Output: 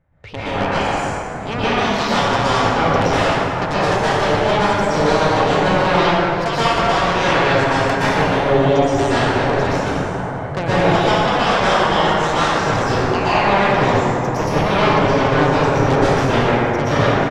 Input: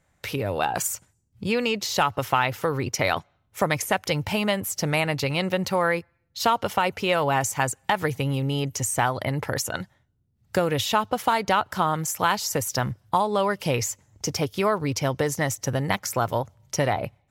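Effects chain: level-controlled noise filter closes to 2.2 kHz, open at -20.5 dBFS; in parallel at -10 dB: wavefolder -17.5 dBFS; on the sum: low-pass that closes with the level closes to 2.7 kHz, closed at -18.5 dBFS; tilt EQ -2 dB/octave; delay 1013 ms -13.5 dB; Chebyshev shaper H 7 -9 dB, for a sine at -6 dBFS; reverberation RT60 3.1 s, pre-delay 108 ms, DRR -12.5 dB; trim -7.5 dB

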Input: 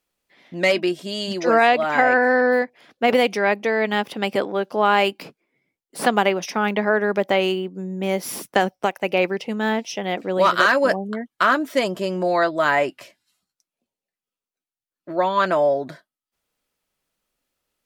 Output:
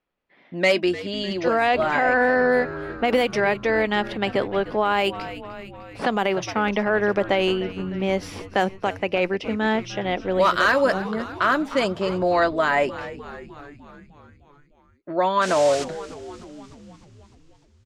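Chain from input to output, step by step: level-controlled noise filter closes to 2.3 kHz, open at -12.5 dBFS; 15.41–15.83 s: band noise 990–7800 Hz -34 dBFS; frequency-shifting echo 302 ms, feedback 64%, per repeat -95 Hz, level -16.5 dB; peak limiter -10.5 dBFS, peak gain reduction 6.5 dB

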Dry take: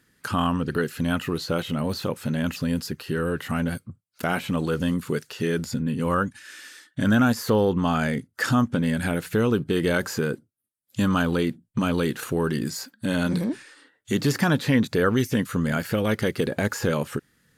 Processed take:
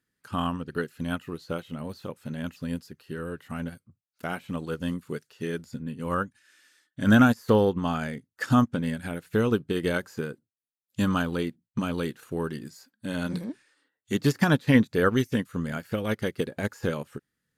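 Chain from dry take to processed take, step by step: upward expansion 2.5:1, over -30 dBFS; trim +3 dB

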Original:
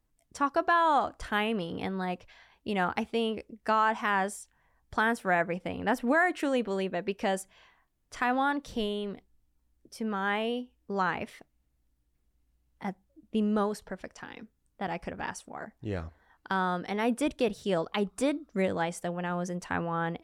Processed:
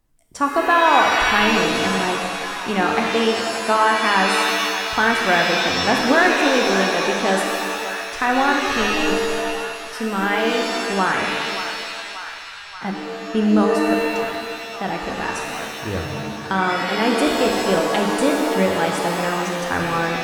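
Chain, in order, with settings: hum notches 60/120/180 Hz; band-passed feedback delay 580 ms, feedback 71%, band-pass 1.5 kHz, level -9 dB; pitch-shifted reverb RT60 1.7 s, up +7 st, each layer -2 dB, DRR 2 dB; trim +7.5 dB

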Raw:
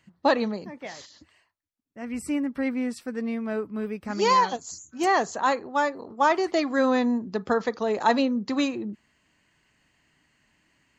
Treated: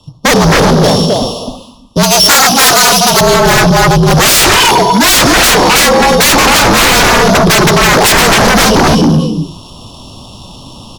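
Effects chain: sorted samples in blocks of 8 samples; elliptic band-stop 1.2–3 kHz, stop band 40 dB; distance through air 65 m; echo from a far wall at 45 m, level -7 dB; gated-style reverb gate 390 ms flat, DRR 10 dB; level rider gain up to 15 dB; sine folder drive 20 dB, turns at -0.5 dBFS; frequency shift -51 Hz; 2.03–3.21 s: tilt EQ +3.5 dB/octave; saturation -1.5 dBFS, distortion -13 dB

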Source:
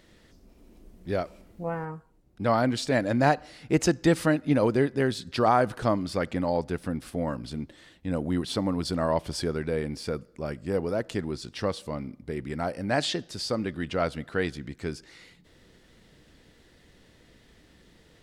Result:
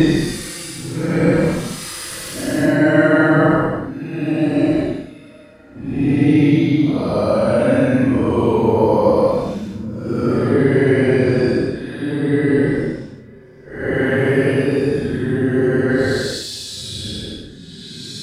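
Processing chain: time reversed locally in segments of 71 ms; Paulstretch 16×, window 0.05 s, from 4.10 s; trim +7.5 dB

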